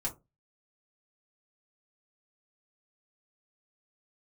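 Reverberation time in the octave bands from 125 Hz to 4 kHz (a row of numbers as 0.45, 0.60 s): 0.35, 0.30, 0.25, 0.20, 0.15, 0.10 s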